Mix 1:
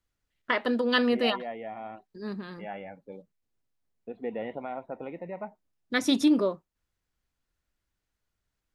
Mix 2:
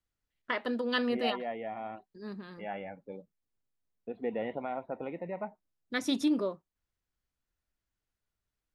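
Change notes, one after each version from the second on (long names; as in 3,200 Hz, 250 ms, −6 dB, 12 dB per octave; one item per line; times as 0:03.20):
first voice −6.0 dB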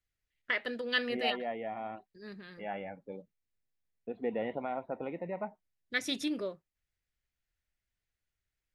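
first voice: add octave-band graphic EQ 250/1,000/2,000 Hz −8/−11/+7 dB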